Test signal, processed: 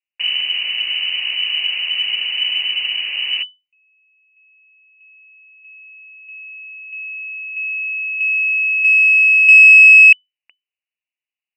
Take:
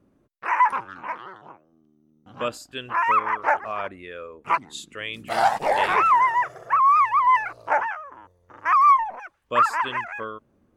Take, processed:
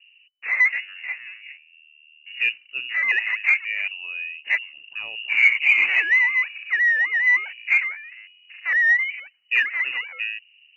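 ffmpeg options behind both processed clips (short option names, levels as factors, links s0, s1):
-af "lowpass=f=2600:t=q:w=0.5098,lowpass=f=2600:t=q:w=0.6013,lowpass=f=2600:t=q:w=0.9,lowpass=f=2600:t=q:w=2.563,afreqshift=-3000,aexciter=amount=15.6:drive=2.7:freq=2200,volume=0.266"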